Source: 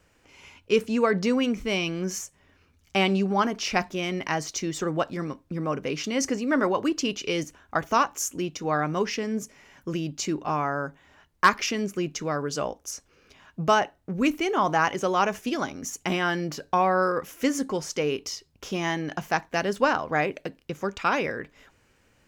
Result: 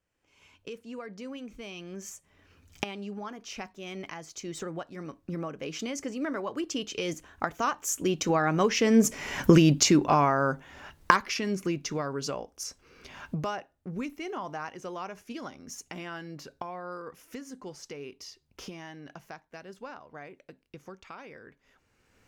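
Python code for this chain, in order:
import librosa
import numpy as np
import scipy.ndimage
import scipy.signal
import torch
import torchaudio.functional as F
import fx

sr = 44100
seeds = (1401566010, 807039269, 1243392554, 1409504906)

y = fx.recorder_agc(x, sr, target_db=-12.5, rise_db_per_s=22.0, max_gain_db=30)
y = fx.doppler_pass(y, sr, speed_mps=14, closest_m=8.2, pass_at_s=9.43)
y = y * librosa.db_to_amplitude(3.5)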